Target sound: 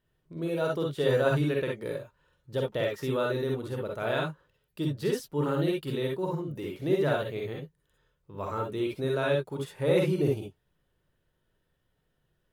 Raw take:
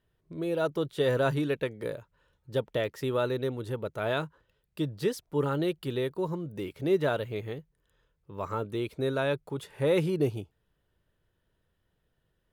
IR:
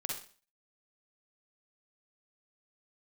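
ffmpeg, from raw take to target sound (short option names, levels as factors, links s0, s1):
-filter_complex "[1:a]atrim=start_sample=2205,afade=t=out:st=0.13:d=0.01,atrim=end_sample=6174[s0];[0:a][s0]afir=irnorm=-1:irlink=0"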